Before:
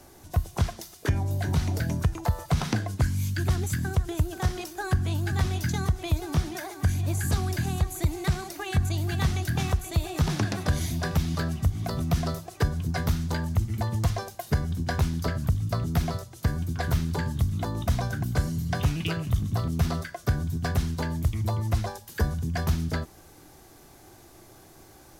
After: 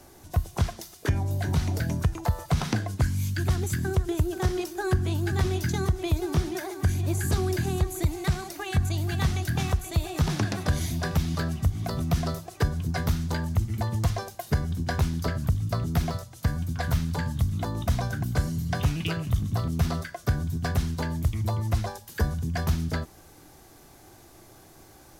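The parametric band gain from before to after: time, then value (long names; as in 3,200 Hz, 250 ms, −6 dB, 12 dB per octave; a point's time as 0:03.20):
parametric band 370 Hz 0.27 octaves
+0.5 dB
from 0:03.63 +9.5 dB
from 0:08.03 0 dB
from 0:16.11 −11.5 dB
from 0:17.45 −1.5 dB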